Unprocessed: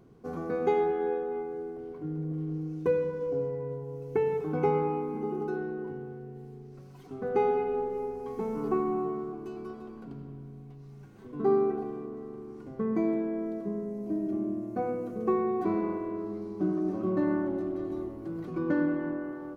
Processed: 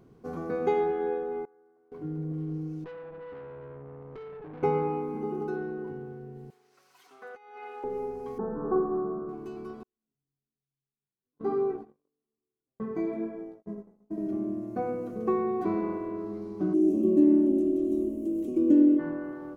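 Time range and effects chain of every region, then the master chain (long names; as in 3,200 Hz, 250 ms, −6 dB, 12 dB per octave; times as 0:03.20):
0:01.45–0:01.92: low-pass filter 1,500 Hz 24 dB per octave + first difference
0:02.84–0:04.63: low-pass filter 1,800 Hz + downward compressor 3 to 1, threshold −35 dBFS + tube saturation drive 40 dB, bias 0.65
0:06.50–0:07.84: high-pass filter 1,200 Hz + compressor whose output falls as the input rises −43 dBFS, ratio −0.5
0:08.38–0:09.29: linear-phase brick-wall low-pass 1,800 Hz + double-tracking delay 24 ms −11 dB + flutter between parallel walls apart 7.3 metres, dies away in 0.59 s
0:09.83–0:14.18: noise gate −33 dBFS, range −45 dB + chorus effect 1.1 Hz, delay 15.5 ms, depth 5.2 ms
0:16.73–0:18.98: drawn EQ curve 100 Hz 0 dB, 140 Hz −29 dB, 220 Hz +11 dB, 360 Hz +7 dB, 630 Hz −6 dB, 900 Hz −14 dB, 1,600 Hz −23 dB, 2,800 Hz +2 dB, 4,400 Hz −8 dB, 7,100 Hz +11 dB + steady tone 620 Hz −49 dBFS
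whole clip: no processing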